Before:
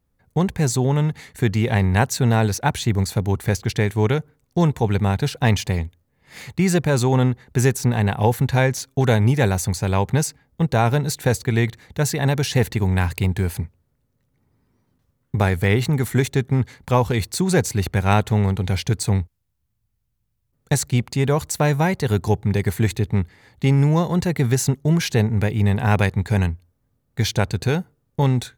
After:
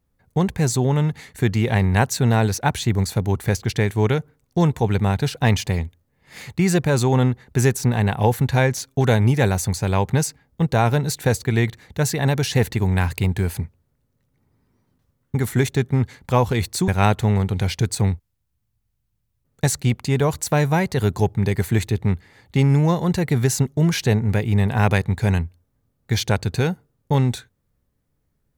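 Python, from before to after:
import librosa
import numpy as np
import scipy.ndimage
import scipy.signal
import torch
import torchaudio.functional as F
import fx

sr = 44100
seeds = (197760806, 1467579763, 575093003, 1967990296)

y = fx.edit(x, sr, fx.cut(start_s=15.35, length_s=0.59),
    fx.cut(start_s=17.47, length_s=0.49), tone=tone)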